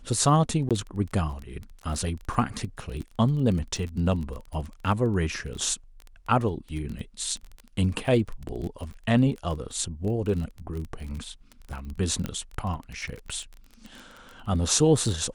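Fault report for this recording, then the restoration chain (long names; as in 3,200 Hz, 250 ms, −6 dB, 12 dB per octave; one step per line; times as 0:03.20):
surface crackle 22 per second −32 dBFS
0:00.69–0:00.71: drop-out 17 ms
0:12.26: click −17 dBFS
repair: click removal
repair the gap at 0:00.69, 17 ms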